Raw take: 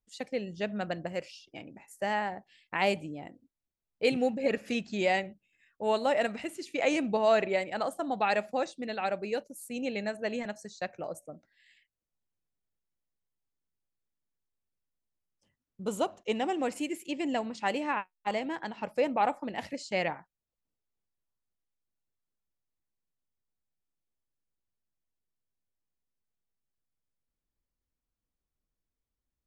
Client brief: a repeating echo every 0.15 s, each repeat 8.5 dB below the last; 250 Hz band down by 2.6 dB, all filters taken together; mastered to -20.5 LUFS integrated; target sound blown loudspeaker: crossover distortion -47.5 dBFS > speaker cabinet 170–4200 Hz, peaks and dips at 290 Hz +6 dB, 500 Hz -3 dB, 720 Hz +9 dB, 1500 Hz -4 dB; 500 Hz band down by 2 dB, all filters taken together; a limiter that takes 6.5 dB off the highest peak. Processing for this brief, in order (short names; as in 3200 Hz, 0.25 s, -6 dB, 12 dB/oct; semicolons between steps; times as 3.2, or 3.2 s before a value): bell 250 Hz -4.5 dB; bell 500 Hz -5.5 dB; limiter -21.5 dBFS; feedback echo 0.15 s, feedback 38%, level -8.5 dB; crossover distortion -47.5 dBFS; speaker cabinet 170–4200 Hz, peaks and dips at 290 Hz +6 dB, 500 Hz -3 dB, 720 Hz +9 dB, 1500 Hz -4 dB; gain +13.5 dB